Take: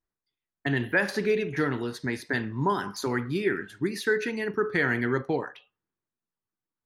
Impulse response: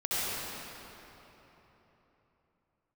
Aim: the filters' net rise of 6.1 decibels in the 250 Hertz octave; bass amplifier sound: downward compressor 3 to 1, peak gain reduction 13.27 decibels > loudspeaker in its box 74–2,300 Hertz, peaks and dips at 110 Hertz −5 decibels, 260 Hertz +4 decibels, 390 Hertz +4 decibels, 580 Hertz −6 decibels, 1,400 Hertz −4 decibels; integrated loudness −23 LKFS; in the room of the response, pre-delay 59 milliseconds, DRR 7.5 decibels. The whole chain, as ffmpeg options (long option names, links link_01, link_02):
-filter_complex "[0:a]equalizer=frequency=250:width_type=o:gain=4.5,asplit=2[link_01][link_02];[1:a]atrim=start_sample=2205,adelay=59[link_03];[link_02][link_03]afir=irnorm=-1:irlink=0,volume=-17.5dB[link_04];[link_01][link_04]amix=inputs=2:normalize=0,acompressor=threshold=-36dB:ratio=3,highpass=frequency=74:width=0.5412,highpass=frequency=74:width=1.3066,equalizer=frequency=110:width_type=q:width=4:gain=-5,equalizer=frequency=260:width_type=q:width=4:gain=4,equalizer=frequency=390:width_type=q:width=4:gain=4,equalizer=frequency=580:width_type=q:width=4:gain=-6,equalizer=frequency=1400:width_type=q:width=4:gain=-4,lowpass=frequency=2300:width=0.5412,lowpass=frequency=2300:width=1.3066,volume=12.5dB"